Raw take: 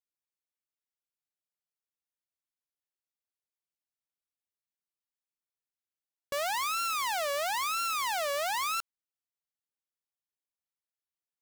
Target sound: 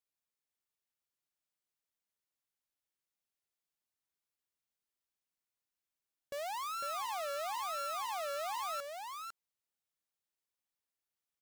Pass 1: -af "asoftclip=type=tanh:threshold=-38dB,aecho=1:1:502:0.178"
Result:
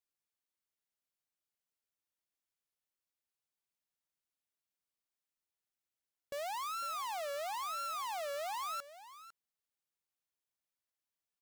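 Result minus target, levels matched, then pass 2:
echo-to-direct -10 dB
-af "asoftclip=type=tanh:threshold=-38dB,aecho=1:1:502:0.562"

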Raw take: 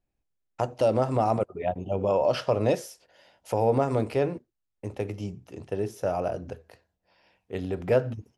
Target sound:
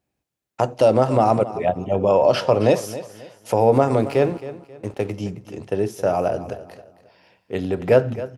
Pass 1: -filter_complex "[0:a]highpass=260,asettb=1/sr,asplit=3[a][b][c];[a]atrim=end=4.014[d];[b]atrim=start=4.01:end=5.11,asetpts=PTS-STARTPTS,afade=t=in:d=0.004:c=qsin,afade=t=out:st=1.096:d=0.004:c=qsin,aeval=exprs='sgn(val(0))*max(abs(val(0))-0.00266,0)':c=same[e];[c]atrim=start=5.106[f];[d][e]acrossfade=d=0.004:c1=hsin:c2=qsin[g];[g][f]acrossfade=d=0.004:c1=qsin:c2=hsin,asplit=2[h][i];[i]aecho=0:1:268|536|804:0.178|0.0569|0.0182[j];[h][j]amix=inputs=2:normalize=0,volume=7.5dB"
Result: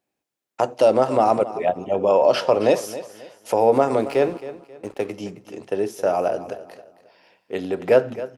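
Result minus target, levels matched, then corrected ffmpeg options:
125 Hz band -10.5 dB
-filter_complex "[0:a]highpass=99,asettb=1/sr,asplit=3[a][b][c];[a]atrim=end=4.014[d];[b]atrim=start=4.01:end=5.11,asetpts=PTS-STARTPTS,afade=t=in:d=0.004:c=qsin,afade=t=out:st=1.096:d=0.004:c=qsin,aeval=exprs='sgn(val(0))*max(abs(val(0))-0.00266,0)':c=same[e];[c]atrim=start=5.106[f];[d][e]acrossfade=d=0.004:c1=hsin:c2=qsin[g];[g][f]acrossfade=d=0.004:c1=qsin:c2=hsin,asplit=2[h][i];[i]aecho=0:1:268|536|804:0.178|0.0569|0.0182[j];[h][j]amix=inputs=2:normalize=0,volume=7.5dB"

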